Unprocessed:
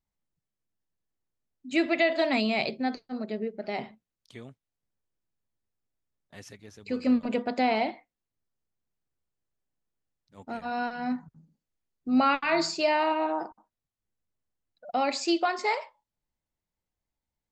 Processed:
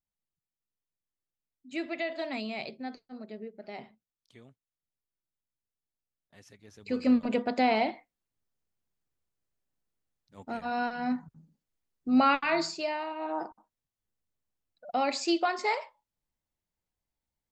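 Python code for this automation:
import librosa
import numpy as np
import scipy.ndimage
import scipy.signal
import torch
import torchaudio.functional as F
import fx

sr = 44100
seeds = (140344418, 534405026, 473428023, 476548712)

y = fx.gain(x, sr, db=fx.line((6.45, -9.5), (6.94, 0.0), (12.39, 0.0), (13.13, -11.5), (13.39, -1.5)))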